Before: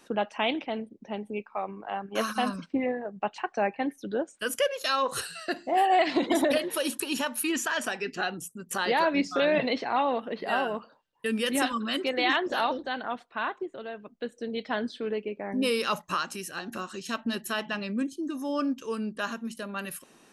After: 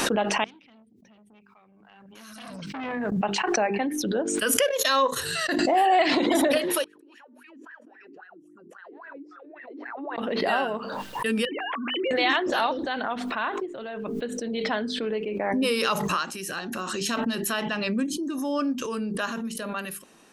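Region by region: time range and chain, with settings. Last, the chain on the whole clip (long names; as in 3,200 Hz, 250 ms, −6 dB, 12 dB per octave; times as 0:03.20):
0:00.44–0:03.12: guitar amp tone stack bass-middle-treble 6-0-2 + saturating transformer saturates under 2,400 Hz
0:04.69–0:05.59: noise gate −35 dBFS, range −15 dB + EQ curve with evenly spaced ripples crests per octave 1.1, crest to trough 7 dB
0:06.84–0:10.18: downward compressor 16 to 1, threshold −34 dBFS + LFO wah 3.7 Hz 280–1,900 Hz, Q 15
0:11.45–0:12.11: three sine waves on the formant tracks + downward compressor 10 to 1, threshold −30 dBFS
whole clip: mains-hum notches 50/100/150/200/250/300/350/400/450 Hz; background raised ahead of every attack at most 23 dB per second; level +2 dB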